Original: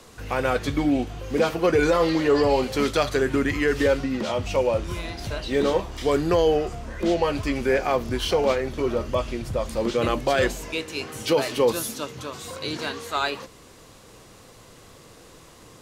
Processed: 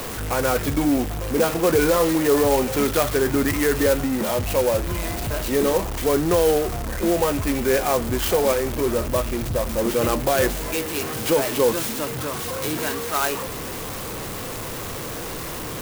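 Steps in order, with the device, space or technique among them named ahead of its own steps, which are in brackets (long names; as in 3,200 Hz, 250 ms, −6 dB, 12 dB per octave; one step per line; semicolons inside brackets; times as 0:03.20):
early CD player with a faulty converter (converter with a step at zero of −25.5 dBFS; converter with an unsteady clock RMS 0.063 ms)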